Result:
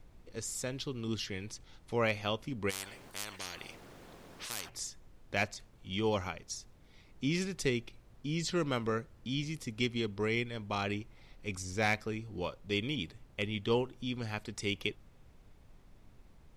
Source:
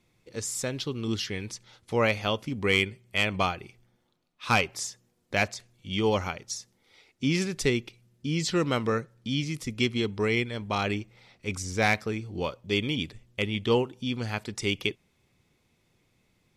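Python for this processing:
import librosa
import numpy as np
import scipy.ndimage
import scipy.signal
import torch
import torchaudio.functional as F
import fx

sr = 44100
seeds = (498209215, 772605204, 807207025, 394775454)

y = fx.dmg_noise_colour(x, sr, seeds[0], colour='brown', level_db=-49.0)
y = fx.spectral_comp(y, sr, ratio=10.0, at=(2.69, 4.68), fade=0.02)
y = y * librosa.db_to_amplitude(-6.5)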